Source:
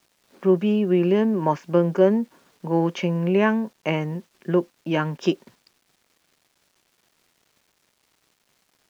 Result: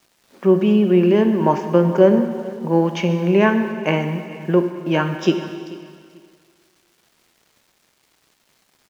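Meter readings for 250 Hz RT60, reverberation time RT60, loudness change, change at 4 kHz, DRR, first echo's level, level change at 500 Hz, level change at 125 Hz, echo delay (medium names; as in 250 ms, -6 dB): 1.9 s, 2.0 s, +4.5 dB, +5.0 dB, 6.5 dB, -19.0 dB, +5.0 dB, +4.5 dB, 439 ms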